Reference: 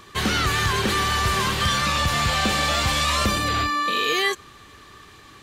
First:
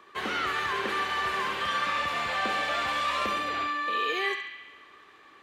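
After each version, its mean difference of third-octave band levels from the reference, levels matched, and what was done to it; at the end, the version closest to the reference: 6.5 dB: three-band isolator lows -21 dB, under 280 Hz, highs -14 dB, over 2800 Hz; on a send: narrowing echo 69 ms, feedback 71%, band-pass 2600 Hz, level -4 dB; on the sum: gain -5.5 dB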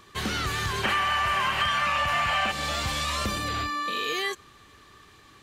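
3.5 dB: spectral gain 0.84–2.51, 550–3200 Hz +12 dB; compressor 5:1, threshold -16 dBFS, peak gain reduction 7.5 dB; gain -6.5 dB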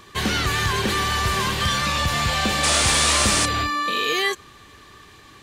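1.5 dB: notch 1300 Hz, Q 11; painted sound noise, 2.63–3.46, 220–10000 Hz -21 dBFS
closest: third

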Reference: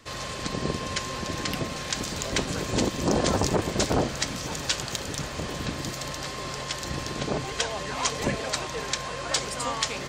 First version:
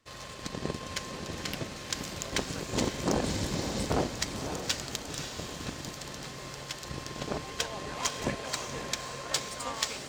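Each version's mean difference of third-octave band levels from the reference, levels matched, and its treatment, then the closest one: 2.5 dB: spectral repair 3.27–3.81, 290–7700 Hz after; power-law curve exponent 1.4; on a send: diffused feedback echo 0.54 s, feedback 41%, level -7 dB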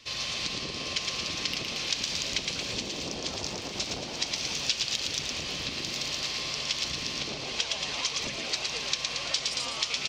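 6.0 dB: frequency-shifting echo 0.113 s, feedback 55%, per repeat +100 Hz, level -4.5 dB; compressor, threshold -28 dBFS, peak gain reduction 10 dB; band shelf 3700 Hz +13.5 dB; gain -7.5 dB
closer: first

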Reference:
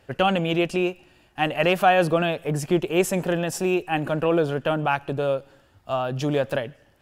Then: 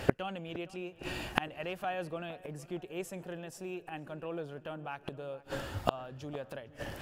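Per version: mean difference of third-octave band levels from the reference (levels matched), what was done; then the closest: 5.0 dB: flipped gate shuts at -26 dBFS, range -36 dB; on a send: darkening echo 0.462 s, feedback 53%, low-pass 2200 Hz, level -18.5 dB; on the sum: gain +17.5 dB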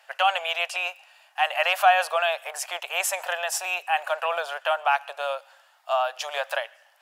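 13.0 dB: steep high-pass 650 Hz 48 dB/oct; in parallel at -1.5 dB: limiter -19.5 dBFS, peak gain reduction 10.5 dB; on the sum: gain -1 dB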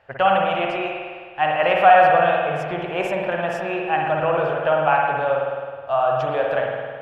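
8.5 dB: EQ curve 130 Hz 0 dB, 320 Hz -6 dB, 640 Hz +12 dB, 1900 Hz +10 dB, 9100 Hz -12 dB; spring tank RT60 1.8 s, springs 52 ms, chirp 65 ms, DRR -1 dB; gain -7.5 dB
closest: first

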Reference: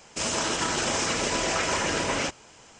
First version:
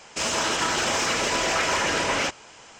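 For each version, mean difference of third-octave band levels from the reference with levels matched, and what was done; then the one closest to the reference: 3.0 dB: low shelf 170 Hz +4.5 dB; overdrive pedal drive 11 dB, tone 4700 Hz, clips at -13.5 dBFS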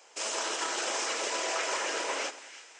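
6.5 dB: HPF 380 Hz 24 dB/oct; on a send: split-band echo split 1500 Hz, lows 94 ms, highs 0.33 s, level -14.5 dB; on the sum: gain -5 dB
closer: first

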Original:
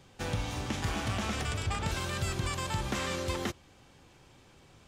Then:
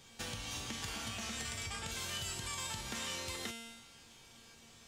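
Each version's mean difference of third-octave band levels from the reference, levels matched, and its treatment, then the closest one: 6.5 dB: resonator 230 Hz, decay 0.81 s, mix 90%; compressor 3:1, threshold -56 dBFS, peak gain reduction 9 dB; high shelf 2100 Hz +11.5 dB; gain +11.5 dB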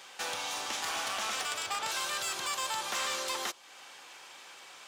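10.0 dB: HPF 940 Hz 12 dB/oct; dynamic EQ 2000 Hz, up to -5 dB, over -51 dBFS, Q 1.1; in parallel at +1 dB: compressor, threshold -54 dBFS, peak gain reduction 17 dB; on the sum: soft clip -33 dBFS, distortion -16 dB; gain +6.5 dB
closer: first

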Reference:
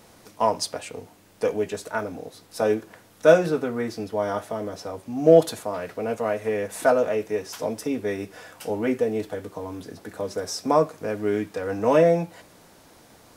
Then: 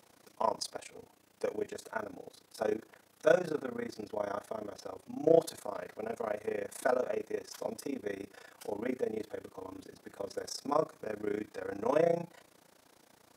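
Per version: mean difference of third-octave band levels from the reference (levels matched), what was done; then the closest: 2.0 dB: HPF 210 Hz 6 dB/oct; dynamic EQ 2800 Hz, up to -6 dB, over -53 dBFS, Q 4; AM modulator 29 Hz, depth 80%; gain -6 dB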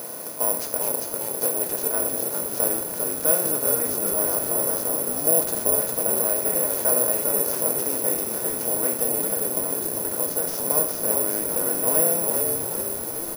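11.0 dB: per-bin compression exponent 0.4; on a send: frequency-shifting echo 0.399 s, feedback 57%, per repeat -56 Hz, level -4 dB; on the sum: careless resampling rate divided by 4×, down none, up zero stuff; gain -14.5 dB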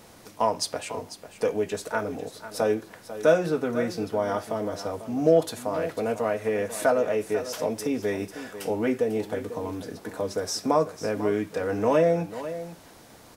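3.5 dB: compressor 1.5:1, threshold -27 dBFS, peak gain reduction 7 dB; on a send: echo 0.495 s -13 dB; on the sum: gain +1.5 dB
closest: first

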